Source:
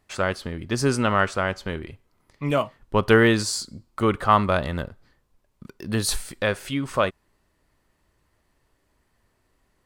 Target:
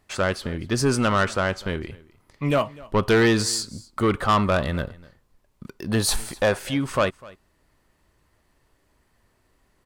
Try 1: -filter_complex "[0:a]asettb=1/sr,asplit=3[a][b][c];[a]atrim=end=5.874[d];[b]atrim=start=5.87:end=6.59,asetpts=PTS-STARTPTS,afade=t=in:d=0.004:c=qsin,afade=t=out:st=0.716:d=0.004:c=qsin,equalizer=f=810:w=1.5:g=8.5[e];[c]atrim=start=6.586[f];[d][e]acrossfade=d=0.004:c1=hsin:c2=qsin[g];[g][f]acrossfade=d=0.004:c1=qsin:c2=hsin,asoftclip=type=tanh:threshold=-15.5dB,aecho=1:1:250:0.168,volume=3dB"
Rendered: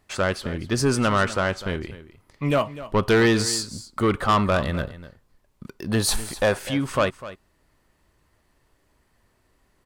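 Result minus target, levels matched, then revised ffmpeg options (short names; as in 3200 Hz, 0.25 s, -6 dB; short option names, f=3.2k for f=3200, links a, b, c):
echo-to-direct +6.5 dB
-filter_complex "[0:a]asettb=1/sr,asplit=3[a][b][c];[a]atrim=end=5.874[d];[b]atrim=start=5.87:end=6.59,asetpts=PTS-STARTPTS,afade=t=in:d=0.004:c=qsin,afade=t=out:st=0.716:d=0.004:c=qsin,equalizer=f=810:w=1.5:g=8.5[e];[c]atrim=start=6.586[f];[d][e]acrossfade=d=0.004:c1=hsin:c2=qsin[g];[g][f]acrossfade=d=0.004:c1=qsin:c2=hsin,asoftclip=type=tanh:threshold=-15.5dB,aecho=1:1:250:0.0794,volume=3dB"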